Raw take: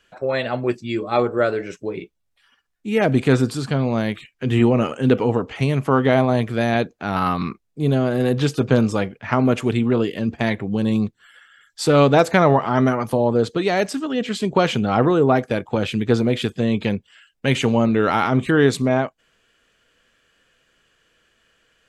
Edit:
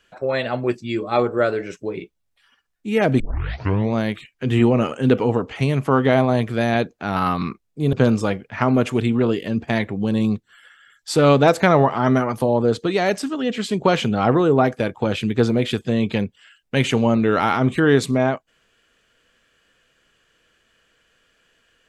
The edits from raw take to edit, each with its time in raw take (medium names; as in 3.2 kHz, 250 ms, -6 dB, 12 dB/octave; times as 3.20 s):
3.20 s: tape start 0.74 s
7.93–8.64 s: delete